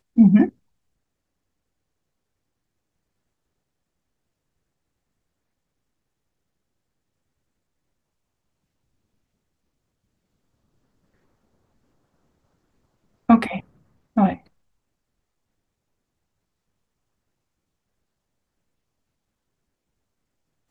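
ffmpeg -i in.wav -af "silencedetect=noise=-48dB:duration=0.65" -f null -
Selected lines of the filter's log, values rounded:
silence_start: 0.51
silence_end: 13.29 | silence_duration: 12.78
silence_start: 14.47
silence_end: 20.70 | silence_duration: 6.23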